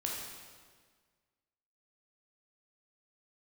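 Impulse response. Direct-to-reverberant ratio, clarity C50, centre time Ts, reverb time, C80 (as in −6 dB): −2.5 dB, 0.5 dB, 81 ms, 1.6 s, 2.5 dB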